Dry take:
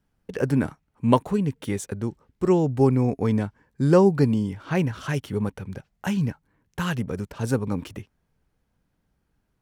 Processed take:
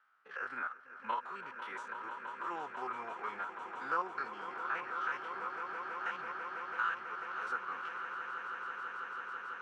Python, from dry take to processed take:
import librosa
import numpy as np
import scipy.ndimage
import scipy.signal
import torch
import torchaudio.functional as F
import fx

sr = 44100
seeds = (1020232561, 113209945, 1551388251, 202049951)

p1 = fx.spec_steps(x, sr, hold_ms=50)
p2 = fx.pitch_keep_formants(p1, sr, semitones=-1.0)
p3 = fx.ladder_bandpass(p2, sr, hz=1400.0, resonance_pct=75)
p4 = p3 + fx.echo_swell(p3, sr, ms=165, loudest=8, wet_db=-14.5, dry=0)
p5 = fx.band_squash(p4, sr, depth_pct=40)
y = p5 * librosa.db_to_amplitude(6.5)